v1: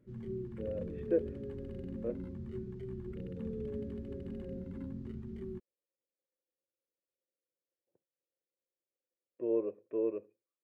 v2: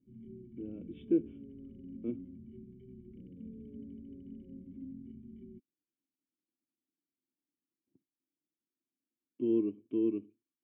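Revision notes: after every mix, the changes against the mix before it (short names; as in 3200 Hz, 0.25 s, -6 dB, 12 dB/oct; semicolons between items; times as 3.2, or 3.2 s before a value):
speech: remove vocal tract filter e; master: add vocal tract filter i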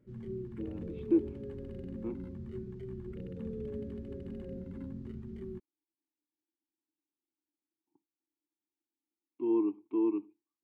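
speech: add vowel filter u; master: remove vocal tract filter i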